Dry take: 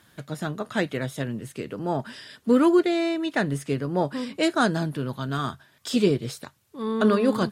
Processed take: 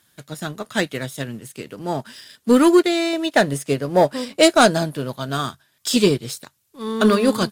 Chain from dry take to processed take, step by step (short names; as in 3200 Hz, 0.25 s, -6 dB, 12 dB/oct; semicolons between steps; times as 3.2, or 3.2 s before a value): 3.13–5.44 bell 610 Hz +8 dB 0.84 oct; sample leveller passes 1; high shelf 3400 Hz +12 dB; upward expander 1.5:1, over -29 dBFS; gain +2.5 dB